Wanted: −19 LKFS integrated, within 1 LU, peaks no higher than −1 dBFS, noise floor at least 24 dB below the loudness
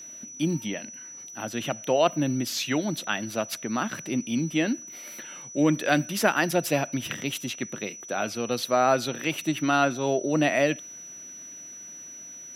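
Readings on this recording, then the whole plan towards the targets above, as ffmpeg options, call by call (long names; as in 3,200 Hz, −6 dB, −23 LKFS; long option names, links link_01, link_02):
interfering tone 5,900 Hz; level of the tone −40 dBFS; integrated loudness −26.5 LKFS; sample peak −5.0 dBFS; target loudness −19.0 LKFS
→ -af "bandreject=frequency=5900:width=30"
-af "volume=7.5dB,alimiter=limit=-1dB:level=0:latency=1"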